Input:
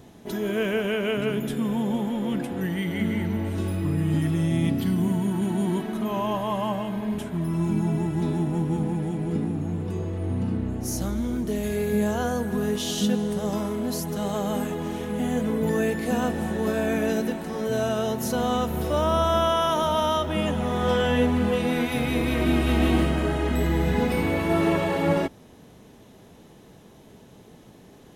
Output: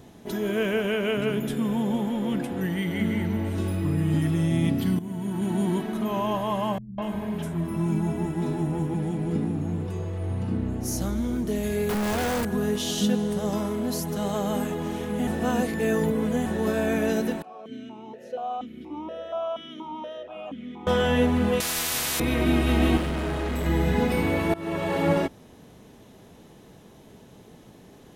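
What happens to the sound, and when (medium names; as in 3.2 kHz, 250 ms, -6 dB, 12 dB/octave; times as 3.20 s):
4.99–5.55 s: fade in, from -15 dB
6.78–8.94 s: three bands offset in time lows, mids, highs 200/240 ms, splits 170/4500 Hz
9.86–10.49 s: peaking EQ 260 Hz -9.5 dB
11.89–12.45 s: companded quantiser 2-bit
15.27–16.46 s: reverse
17.42–20.87 s: stepped vowel filter 4.2 Hz
21.60–22.20 s: spectrum-flattening compressor 10:1
22.97–23.66 s: overload inside the chain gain 25 dB
24.54–24.98 s: fade in, from -22.5 dB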